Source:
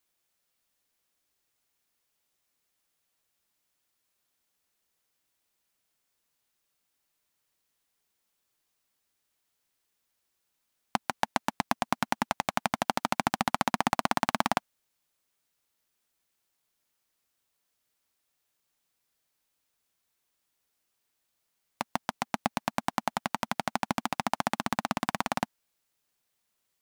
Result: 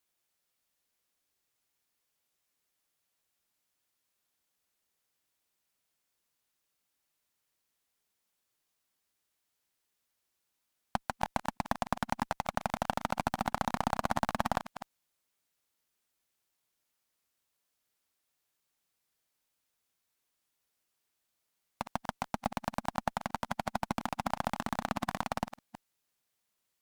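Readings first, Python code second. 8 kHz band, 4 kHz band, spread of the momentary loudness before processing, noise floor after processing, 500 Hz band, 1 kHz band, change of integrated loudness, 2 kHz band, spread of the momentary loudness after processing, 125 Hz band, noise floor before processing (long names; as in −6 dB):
−7.5 dB, −7.5 dB, 6 LU, −82 dBFS, −2.5 dB, −4.0 dB, −4.5 dB, −6.0 dB, 6 LU, −0.5 dB, −79 dBFS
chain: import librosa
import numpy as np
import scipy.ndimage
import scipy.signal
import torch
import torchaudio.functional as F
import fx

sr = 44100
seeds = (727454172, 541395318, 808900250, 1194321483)

y = fx.reverse_delay(x, sr, ms=163, wet_db=-13.5)
y = fx.tube_stage(y, sr, drive_db=11.0, bias=0.6)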